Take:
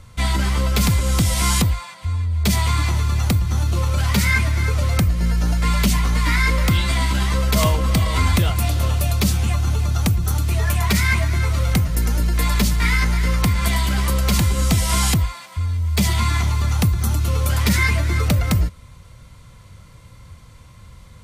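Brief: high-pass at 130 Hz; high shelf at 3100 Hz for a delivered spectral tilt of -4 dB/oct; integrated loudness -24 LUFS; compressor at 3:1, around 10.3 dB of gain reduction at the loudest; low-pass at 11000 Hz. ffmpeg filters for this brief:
-af "highpass=130,lowpass=11k,highshelf=f=3.1k:g=5,acompressor=threshold=-29dB:ratio=3,volume=5.5dB"

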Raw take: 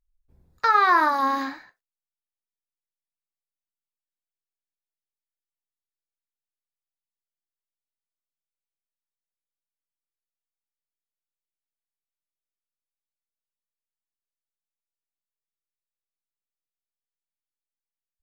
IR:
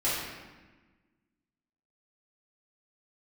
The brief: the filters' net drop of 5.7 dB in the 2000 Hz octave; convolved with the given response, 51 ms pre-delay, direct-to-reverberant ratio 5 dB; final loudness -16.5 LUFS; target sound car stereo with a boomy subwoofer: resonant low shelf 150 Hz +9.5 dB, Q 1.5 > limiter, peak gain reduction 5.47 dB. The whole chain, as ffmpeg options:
-filter_complex "[0:a]equalizer=f=2k:t=o:g=-7.5,asplit=2[a][b];[1:a]atrim=start_sample=2205,adelay=51[c];[b][c]afir=irnorm=-1:irlink=0,volume=-15.5dB[d];[a][d]amix=inputs=2:normalize=0,lowshelf=f=150:t=q:w=1.5:g=9.5,volume=8.5dB,alimiter=limit=-6dB:level=0:latency=1"

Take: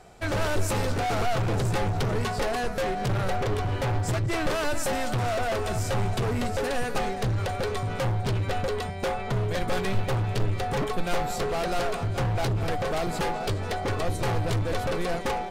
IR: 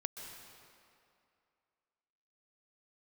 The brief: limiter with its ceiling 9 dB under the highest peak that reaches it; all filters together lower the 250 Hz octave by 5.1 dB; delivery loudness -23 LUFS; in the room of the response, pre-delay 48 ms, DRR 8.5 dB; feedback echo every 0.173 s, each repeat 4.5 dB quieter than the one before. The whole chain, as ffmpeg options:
-filter_complex "[0:a]equalizer=f=250:t=o:g=-8,alimiter=limit=-23.5dB:level=0:latency=1,aecho=1:1:173|346|519|692|865|1038|1211|1384|1557:0.596|0.357|0.214|0.129|0.0772|0.0463|0.0278|0.0167|0.01,asplit=2[a][b];[1:a]atrim=start_sample=2205,adelay=48[c];[b][c]afir=irnorm=-1:irlink=0,volume=-8dB[d];[a][d]amix=inputs=2:normalize=0,volume=6dB"

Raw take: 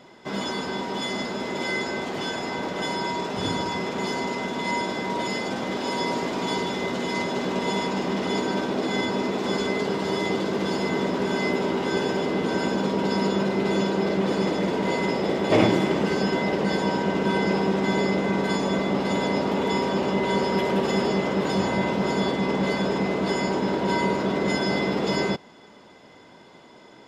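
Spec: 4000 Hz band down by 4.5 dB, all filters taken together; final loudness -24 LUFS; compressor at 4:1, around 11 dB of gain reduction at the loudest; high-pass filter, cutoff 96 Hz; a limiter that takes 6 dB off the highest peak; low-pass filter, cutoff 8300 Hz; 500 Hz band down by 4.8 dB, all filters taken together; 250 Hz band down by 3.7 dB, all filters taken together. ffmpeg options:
-af "highpass=96,lowpass=8.3k,equalizer=f=250:t=o:g=-3.5,equalizer=f=500:t=o:g=-5,equalizer=f=4k:t=o:g=-5.5,acompressor=threshold=-31dB:ratio=4,volume=11.5dB,alimiter=limit=-15dB:level=0:latency=1"

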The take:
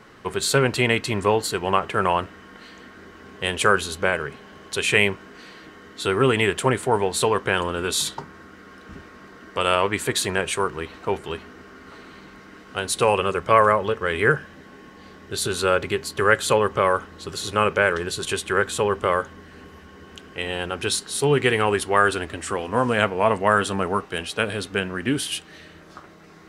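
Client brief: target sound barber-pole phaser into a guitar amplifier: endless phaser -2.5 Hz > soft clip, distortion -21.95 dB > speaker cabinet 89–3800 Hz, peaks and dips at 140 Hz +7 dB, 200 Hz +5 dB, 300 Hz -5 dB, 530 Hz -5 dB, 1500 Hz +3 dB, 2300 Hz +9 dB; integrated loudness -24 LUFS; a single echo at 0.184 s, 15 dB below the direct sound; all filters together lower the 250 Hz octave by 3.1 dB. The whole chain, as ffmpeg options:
-filter_complex "[0:a]equalizer=f=250:t=o:g=-7,aecho=1:1:184:0.178,asplit=2[a][b];[b]afreqshift=-2.5[c];[a][c]amix=inputs=2:normalize=1,asoftclip=threshold=-10.5dB,highpass=89,equalizer=f=140:t=q:w=4:g=7,equalizer=f=200:t=q:w=4:g=5,equalizer=f=300:t=q:w=4:g=-5,equalizer=f=530:t=q:w=4:g=-5,equalizer=f=1.5k:t=q:w=4:g=3,equalizer=f=2.3k:t=q:w=4:g=9,lowpass=f=3.8k:w=0.5412,lowpass=f=3.8k:w=1.3066,volume=1.5dB"

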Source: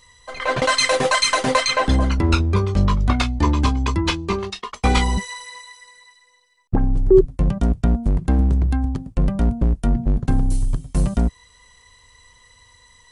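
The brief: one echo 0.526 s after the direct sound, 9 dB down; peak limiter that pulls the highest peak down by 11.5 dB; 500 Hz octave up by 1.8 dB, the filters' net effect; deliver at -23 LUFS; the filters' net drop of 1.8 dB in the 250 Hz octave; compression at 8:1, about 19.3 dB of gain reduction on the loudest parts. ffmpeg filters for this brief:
-af "equalizer=f=250:t=o:g=-4,equalizer=f=500:t=o:g=4,acompressor=threshold=-27dB:ratio=8,alimiter=level_in=2dB:limit=-24dB:level=0:latency=1,volume=-2dB,aecho=1:1:526:0.355,volume=12dB"

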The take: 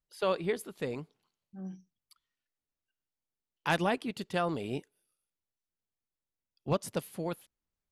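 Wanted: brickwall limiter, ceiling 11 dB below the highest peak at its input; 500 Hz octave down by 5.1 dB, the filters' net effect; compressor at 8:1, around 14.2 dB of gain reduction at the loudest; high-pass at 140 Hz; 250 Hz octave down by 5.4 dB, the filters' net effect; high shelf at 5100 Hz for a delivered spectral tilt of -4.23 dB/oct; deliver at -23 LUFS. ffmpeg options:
-af "highpass=140,equalizer=f=250:t=o:g=-5.5,equalizer=f=500:t=o:g=-5,highshelf=f=5.1k:g=5.5,acompressor=threshold=-40dB:ratio=8,volume=25dB,alimiter=limit=-9.5dB:level=0:latency=1"

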